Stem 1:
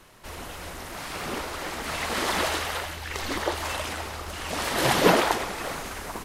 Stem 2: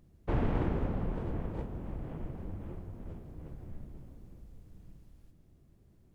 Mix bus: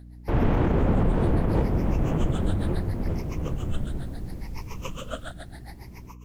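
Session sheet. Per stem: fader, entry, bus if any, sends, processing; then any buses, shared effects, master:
−16.0 dB, 0.00 s, no send, rippled gain that drifts along the octave scale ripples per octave 0.79, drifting +0.72 Hz, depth 22 dB; tremolo with a sine in dB 7.2 Hz, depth 23 dB
+2.5 dB, 0.00 s, no send, automatic gain control gain up to 14 dB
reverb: not used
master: mains hum 60 Hz, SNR 22 dB; brickwall limiter −13.5 dBFS, peak gain reduction 10 dB

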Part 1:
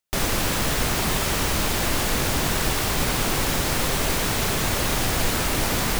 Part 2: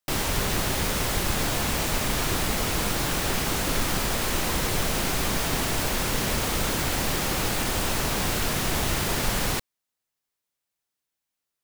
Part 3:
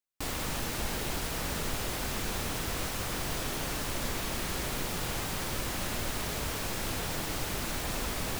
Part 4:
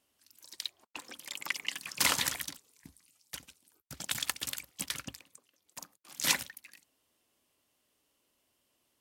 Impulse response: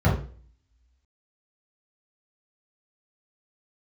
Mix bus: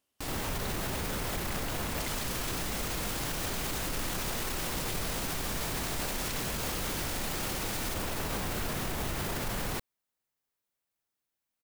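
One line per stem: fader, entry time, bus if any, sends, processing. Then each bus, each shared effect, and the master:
−3.5 dB, 1.95 s, no send, guitar amp tone stack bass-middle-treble 10-0-10
−0.5 dB, 0.20 s, no send, parametric band 5,500 Hz −4.5 dB 2.7 octaves
−2.5 dB, 0.00 s, no send, no processing
−5.5 dB, 0.00 s, no send, no processing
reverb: not used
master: brickwall limiter −24.5 dBFS, peak gain reduction 13 dB

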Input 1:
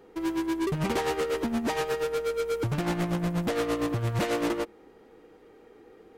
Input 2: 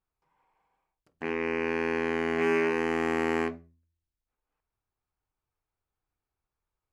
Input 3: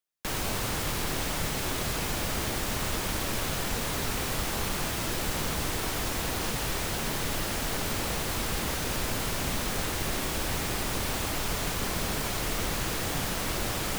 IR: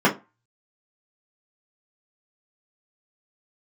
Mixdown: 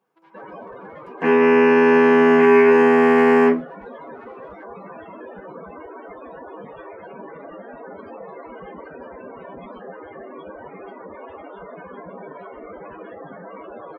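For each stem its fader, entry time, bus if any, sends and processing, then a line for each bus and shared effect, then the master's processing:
−4.5 dB, 0.00 s, bus A, no send, adaptive Wiener filter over 25 samples; high-pass filter 1,200 Hz 12 dB per octave; brickwall limiter −31.5 dBFS, peak gain reduction 10 dB
+0.5 dB, 0.00 s, no bus, send −5 dB, low-shelf EQ 160 Hz −11 dB
+2.5 dB, 0.10 s, bus A, send −24 dB, high-pass filter 62 Hz 6 dB per octave; bass and treble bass −11 dB, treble −1 dB; spectral peaks only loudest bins 16
bus A: 0.0 dB, head-to-tape spacing loss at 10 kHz 44 dB; brickwall limiter −35.5 dBFS, peak gain reduction 6.5 dB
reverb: on, RT60 0.25 s, pre-delay 3 ms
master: brickwall limiter −5.5 dBFS, peak gain reduction 5.5 dB

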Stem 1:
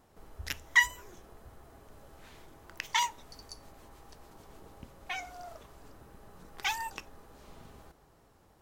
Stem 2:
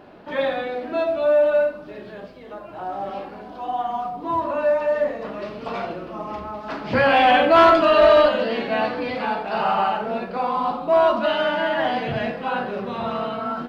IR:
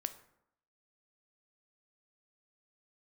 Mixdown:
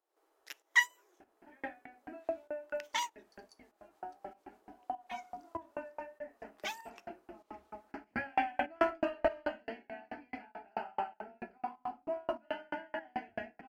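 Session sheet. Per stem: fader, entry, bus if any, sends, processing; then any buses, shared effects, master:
−1.5 dB, 0.00 s, no send, elliptic high-pass filter 320 Hz; expander for the loud parts 1.5 to 1, over −47 dBFS
−7.0 dB, 1.20 s, no send, phaser with its sweep stopped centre 760 Hz, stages 8; tremolo with a ramp in dB decaying 4.6 Hz, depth 40 dB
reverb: not used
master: fake sidechain pumping 97 BPM, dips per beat 1, −10 dB, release 253 ms

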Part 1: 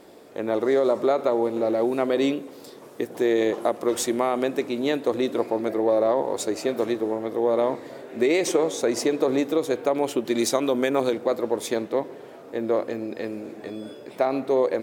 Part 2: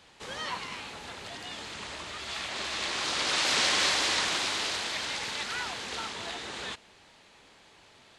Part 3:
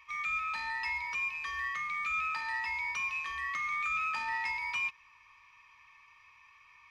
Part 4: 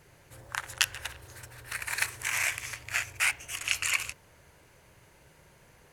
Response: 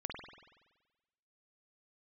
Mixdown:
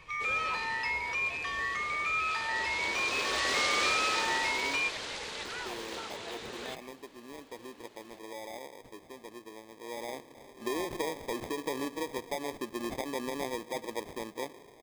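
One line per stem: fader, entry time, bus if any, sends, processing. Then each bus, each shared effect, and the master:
0:09.68 −22.5 dB → 0:10.42 −13 dB, 2.45 s, no send, decimation without filtering 31×
−6.0 dB, 0.00 s, no send, parametric band 460 Hz +8.5 dB 0.77 octaves
+2.0 dB, 0.00 s, no send, no processing
−13.5 dB, 0.00 s, no send, spectral tilt −4 dB per octave; downward compressor, threshold −42 dBFS, peak gain reduction 16.5 dB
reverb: not used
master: no processing

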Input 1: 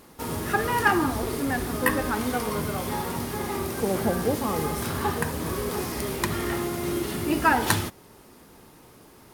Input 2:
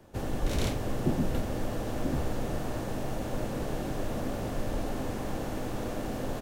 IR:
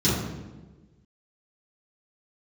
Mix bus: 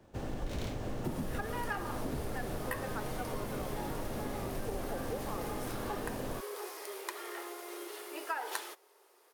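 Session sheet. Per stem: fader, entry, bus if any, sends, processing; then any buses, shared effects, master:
−11.0 dB, 0.85 s, no send, elliptic high-pass filter 390 Hz, stop band 60 dB
−4.5 dB, 0.00 s, no send, windowed peak hold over 3 samples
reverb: not used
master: downward compressor, threshold −32 dBFS, peak gain reduction 6.5 dB

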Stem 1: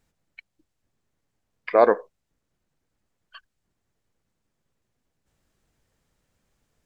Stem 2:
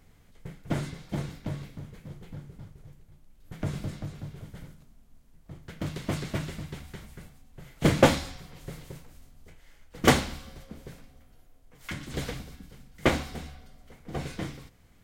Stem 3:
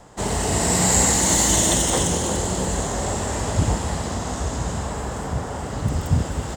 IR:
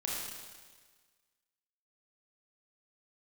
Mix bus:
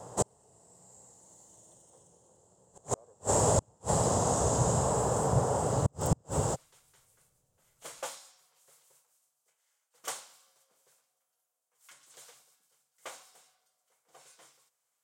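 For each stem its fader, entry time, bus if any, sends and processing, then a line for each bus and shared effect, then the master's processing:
−8.0 dB, 1.20 s, no send, no processing
−11.5 dB, 0.00 s, no send, high-pass filter 1,500 Hz 12 dB per octave
−3.0 dB, 0.00 s, no send, high-pass filter 220 Hz 6 dB per octave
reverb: not used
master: graphic EQ with 10 bands 125 Hz +12 dB, 250 Hz −4 dB, 500 Hz +8 dB, 1,000 Hz +4 dB, 2,000 Hz −10 dB, 4,000 Hz −5 dB, 8,000 Hz +8 dB; gate with flip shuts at −14 dBFS, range −41 dB

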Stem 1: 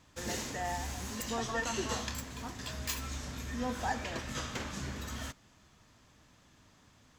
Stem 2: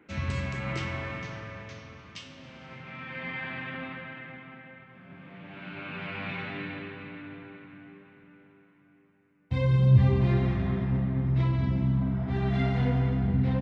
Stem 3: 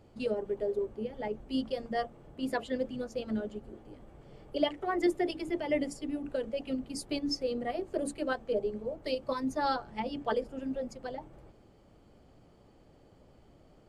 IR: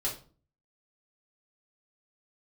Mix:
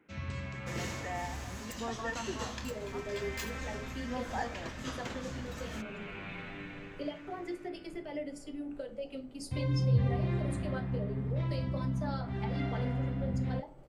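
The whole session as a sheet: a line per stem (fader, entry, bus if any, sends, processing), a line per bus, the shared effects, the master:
−2.0 dB, 0.50 s, no send, high-shelf EQ 5,000 Hz −7 dB
−8.0 dB, 0.00 s, no send, no processing
−7.0 dB, 2.45 s, send −6.5 dB, downward compressor 4 to 1, threshold −35 dBFS, peak gain reduction 11.5 dB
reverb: on, RT60 0.40 s, pre-delay 3 ms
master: no processing

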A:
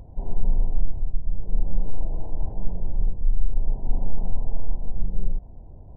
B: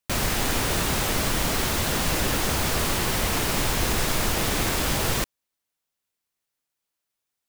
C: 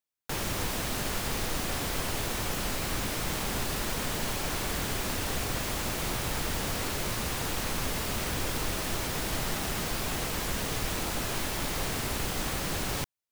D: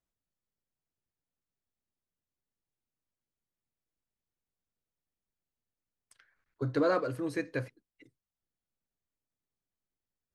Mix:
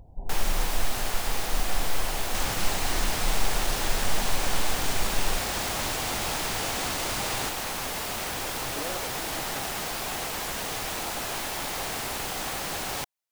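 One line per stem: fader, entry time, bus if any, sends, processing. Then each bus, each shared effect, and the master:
−7.0 dB, 0.00 s, no send, no processing
−12.0 dB, 2.25 s, no send, high-shelf EQ 11,000 Hz +11.5 dB; decimation without filtering 3×
+1.5 dB, 0.00 s, no send, low-shelf EQ 300 Hz −10.5 dB
−11.0 dB, 2.00 s, no send, no processing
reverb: not used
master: parametric band 770 Hz +5 dB 0.52 octaves

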